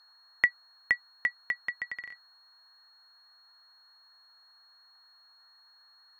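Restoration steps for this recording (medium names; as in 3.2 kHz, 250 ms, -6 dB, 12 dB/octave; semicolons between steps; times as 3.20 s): band-stop 4.3 kHz, Q 30; noise print and reduce 29 dB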